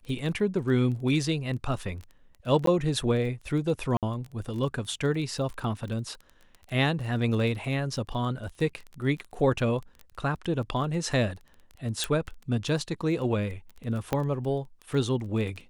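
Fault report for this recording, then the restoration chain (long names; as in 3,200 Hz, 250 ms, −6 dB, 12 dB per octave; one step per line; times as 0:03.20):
surface crackle 20 per second −35 dBFS
0:02.66–0:02.67: drop-out 13 ms
0:03.97–0:04.03: drop-out 57 ms
0:12.04: click
0:14.13: click −13 dBFS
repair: click removal
repair the gap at 0:02.66, 13 ms
repair the gap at 0:03.97, 57 ms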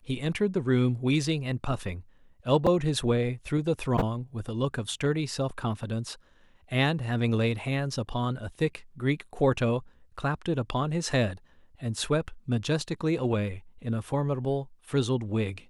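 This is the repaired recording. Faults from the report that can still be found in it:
none of them is left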